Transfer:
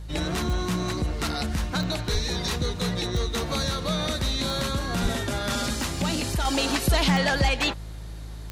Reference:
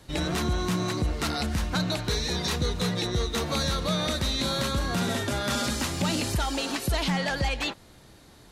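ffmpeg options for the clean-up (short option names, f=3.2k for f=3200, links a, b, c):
-filter_complex "[0:a]adeclick=t=4,bandreject=f=53.6:t=h:w=4,bandreject=f=107.2:t=h:w=4,bandreject=f=160.8:t=h:w=4,asplit=3[a][b][c];[a]afade=t=out:st=2.12:d=0.02[d];[b]highpass=f=140:w=0.5412,highpass=f=140:w=1.3066,afade=t=in:st=2.12:d=0.02,afade=t=out:st=2.24:d=0.02[e];[c]afade=t=in:st=2.24:d=0.02[f];[d][e][f]amix=inputs=3:normalize=0,asplit=3[g][h][i];[g]afade=t=out:st=5.02:d=0.02[j];[h]highpass=f=140:w=0.5412,highpass=f=140:w=1.3066,afade=t=in:st=5.02:d=0.02,afade=t=out:st=5.14:d=0.02[k];[i]afade=t=in:st=5.14:d=0.02[l];[j][k][l]amix=inputs=3:normalize=0,asetnsamples=n=441:p=0,asendcmd='6.45 volume volume -5dB',volume=0dB"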